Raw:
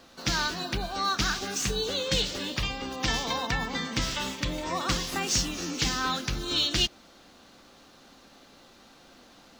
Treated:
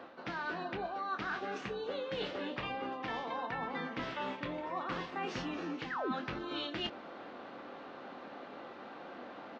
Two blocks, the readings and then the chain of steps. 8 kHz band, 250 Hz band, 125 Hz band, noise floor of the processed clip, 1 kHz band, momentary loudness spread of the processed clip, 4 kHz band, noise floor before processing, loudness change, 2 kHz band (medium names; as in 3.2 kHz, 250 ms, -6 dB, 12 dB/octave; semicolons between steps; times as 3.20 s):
-31.5 dB, -6.5 dB, -14.5 dB, -49 dBFS, -5.0 dB, 11 LU, -16.5 dB, -55 dBFS, -11.5 dB, -8.0 dB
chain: high-pass 110 Hz 12 dB/octave; tone controls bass -13 dB, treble -15 dB; painted sound fall, 5.90–6.12 s, 210–2100 Hz -25 dBFS; tape spacing loss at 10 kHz 31 dB; reverse; compression 6:1, threshold -49 dBFS, peak gain reduction 23 dB; reverse; doubling 24 ms -9 dB; trim +12 dB